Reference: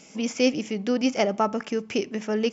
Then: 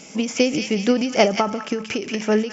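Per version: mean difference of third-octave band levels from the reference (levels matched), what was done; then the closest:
4.0 dB: delay with a high-pass on its return 179 ms, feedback 34%, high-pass 1,500 Hz, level −5 dB
every ending faded ahead of time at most 120 dB per second
level +8 dB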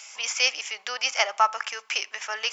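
11.5 dB: high-pass filter 940 Hz 24 dB per octave
reversed playback
upward compression, threshold −41 dBFS
reversed playback
level +7.5 dB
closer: first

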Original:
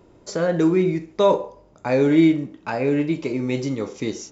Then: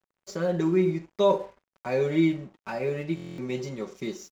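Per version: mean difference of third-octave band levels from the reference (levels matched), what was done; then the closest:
3.0 dB: comb filter 5.3 ms, depth 87%
dead-zone distortion −43 dBFS
buffer that repeats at 0:03.15, samples 1,024, times 9
level −8.5 dB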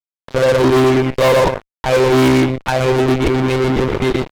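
11.5 dB: on a send: repeating echo 121 ms, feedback 15%, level −4 dB
on the sum: one-pitch LPC vocoder at 8 kHz 130 Hz
fuzz pedal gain 25 dB, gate −33 dBFS
level +4 dB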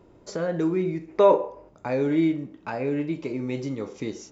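2.0 dB: in parallel at 0 dB: downward compressor, threshold −30 dBFS, peak gain reduction 17.5 dB
on the sum: gain on a spectral selection 0:01.08–0:01.69, 270–2,900 Hz +7 dB
high-shelf EQ 3,800 Hz −6 dB
level −8 dB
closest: third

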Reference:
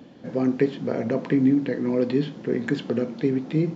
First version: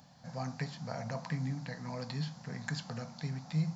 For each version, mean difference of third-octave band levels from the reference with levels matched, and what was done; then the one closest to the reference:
8.0 dB: drawn EQ curve 160 Hz 0 dB, 360 Hz −29 dB, 750 Hz +2 dB, 3,200 Hz −7 dB, 4,600 Hz +9 dB
level −5 dB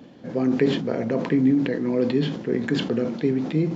2.0 dB: level that may fall only so fast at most 70 dB per second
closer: second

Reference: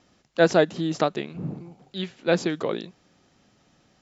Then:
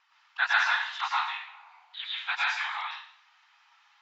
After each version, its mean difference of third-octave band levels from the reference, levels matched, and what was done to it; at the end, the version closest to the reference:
17.0 dB: linear-phase brick-wall high-pass 820 Hz
random phases in short frames
Chebyshev low-pass filter 2,800 Hz, order 2
dense smooth reverb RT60 0.59 s, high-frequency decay 0.95×, pre-delay 95 ms, DRR −5.5 dB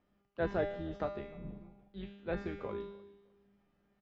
5.0 dB: sub-octave generator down 2 octaves, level −3 dB
low-pass filter 2,000 Hz 12 dB per octave
tuned comb filter 200 Hz, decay 0.9 s, mix 90%
on a send: repeating echo 304 ms, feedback 27%, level −23 dB
on the sum: level +2.5 dB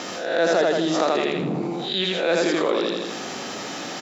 9.5 dB: peak hold with a rise ahead of every peak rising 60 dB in 0.31 s
high-pass filter 310 Hz 12 dB per octave
on a send: repeating echo 82 ms, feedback 35%, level −3 dB
on the sum: envelope flattener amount 70%
level −4 dB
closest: second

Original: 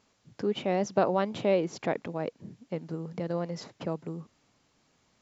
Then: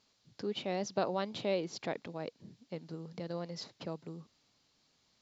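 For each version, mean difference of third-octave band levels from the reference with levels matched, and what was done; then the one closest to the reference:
2.0 dB: parametric band 4,300 Hz +11.5 dB 0.98 octaves
level −8 dB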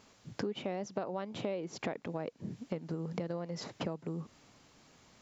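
5.0 dB: downward compressor 8 to 1, threshold −41 dBFS, peak gain reduction 21.5 dB
level +7 dB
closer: first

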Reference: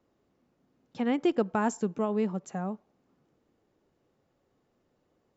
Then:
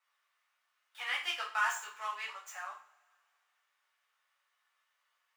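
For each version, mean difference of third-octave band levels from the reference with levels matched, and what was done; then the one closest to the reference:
17.5 dB: running median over 9 samples
high-pass filter 1,300 Hz 24 dB per octave
coupled-rooms reverb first 0.37 s, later 2.2 s, from −28 dB, DRR −7.5 dB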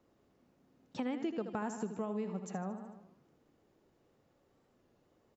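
5.5 dB: on a send: repeating echo 76 ms, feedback 54%, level −10.5 dB
on the sum: downward compressor 4 to 1, threshold −37 dBFS, peak gain reduction 13.5 dB
wow of a warped record 33 1/3 rpm, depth 100 cents
level +1 dB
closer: second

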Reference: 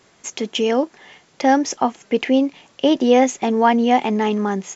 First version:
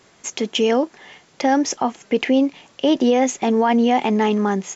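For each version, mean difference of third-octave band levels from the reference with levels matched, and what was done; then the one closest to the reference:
1.5 dB: brickwall limiter −9.5 dBFS, peak gain reduction 6.5 dB
level +1.5 dB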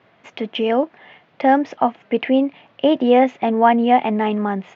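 3.0 dB: loudspeaker in its box 100–3,100 Hz, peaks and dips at 110 Hz +6 dB, 380 Hz −4 dB, 660 Hz +5 dB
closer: first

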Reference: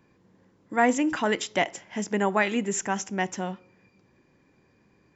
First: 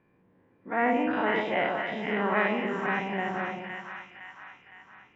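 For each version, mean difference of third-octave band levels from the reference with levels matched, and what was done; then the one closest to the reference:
9.0 dB: every bin's largest magnitude spread in time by 120 ms
low-pass filter 2,800 Hz 24 dB per octave
low-shelf EQ 190 Hz −3 dB
on a send: echo with a time of its own for lows and highs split 980 Hz, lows 132 ms, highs 512 ms, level −3.5 dB
on the sum: level −8 dB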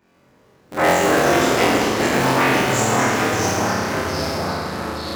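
16.5 dB: sub-harmonics by changed cycles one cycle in 3, inverted
high-pass filter 150 Hz 6 dB per octave
on a send: flutter between parallel walls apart 3.9 metres, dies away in 1.5 s
on the sum: delay with pitch and tempo change per echo 128 ms, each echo −3 semitones, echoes 3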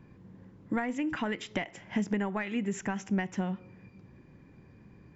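4.5 dB: dynamic equaliser 2,200 Hz, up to +6 dB, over −40 dBFS, Q 1.1
in parallel at −12 dB: hard clipping −18.5 dBFS, distortion −10 dB
on the sum: downward compressor 16 to 1, threshold −31 dBFS, peak gain reduction 18.5 dB
bass and treble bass +11 dB, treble −8 dB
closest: third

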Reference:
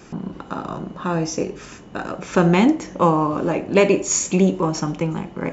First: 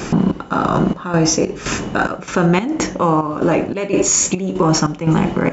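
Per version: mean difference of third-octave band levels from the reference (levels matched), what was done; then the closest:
5.5 dB: dynamic equaliser 1,400 Hz, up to +5 dB, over −44 dBFS, Q 4.5
reversed playback
downward compressor 10 to 1, threshold −26 dBFS, peak gain reduction 17 dB
reversed playback
gate pattern "xxx..xxxx.." 145 BPM −12 dB
boost into a limiter +23.5 dB
level −4.5 dB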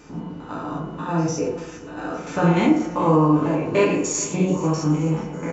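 4.0 dB: spectrum averaged block by block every 100 ms
flanger 0.95 Hz, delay 4 ms, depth 5.1 ms, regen −57%
repeating echo 429 ms, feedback 60%, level −19 dB
feedback delay network reverb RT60 0.72 s, low-frequency decay 1×, high-frequency decay 0.45×, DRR −2 dB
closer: second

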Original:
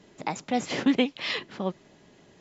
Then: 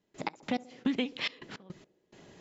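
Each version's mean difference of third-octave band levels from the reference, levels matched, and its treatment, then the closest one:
7.0 dB: dynamic equaliser 710 Hz, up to −5 dB, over −39 dBFS, Q 0.88
downward compressor 6 to 1, threshold −28 dBFS, peak gain reduction 9.5 dB
gate pattern ".x.x..xxx" 106 BPM −24 dB
feedback echo with a band-pass in the loop 67 ms, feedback 80%, band-pass 420 Hz, level −19 dB
level +1.5 dB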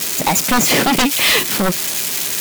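14.0 dB: spike at every zero crossing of −23 dBFS
parametric band 2,400 Hz +3 dB 0.2 octaves
sine wavefolder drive 14 dB, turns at −10 dBFS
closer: first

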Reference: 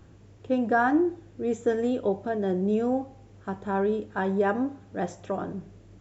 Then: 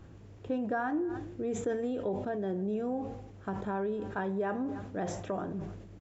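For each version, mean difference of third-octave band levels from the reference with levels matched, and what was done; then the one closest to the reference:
4.5 dB: high-shelf EQ 4,400 Hz −5.5 dB
downward compressor 2.5 to 1, threshold −34 dBFS, peak gain reduction 10.5 dB
single-tap delay 294 ms −22.5 dB
level that may fall only so fast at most 51 dB per second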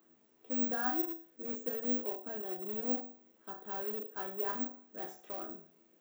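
8.5 dB: high-pass filter 230 Hz 24 dB per octave
resonators tuned to a chord E2 sus4, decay 0.39 s
in parallel at −12 dB: wrap-around overflow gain 39.5 dB
on the sum: bad sample-rate conversion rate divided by 2×, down none, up zero stuff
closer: first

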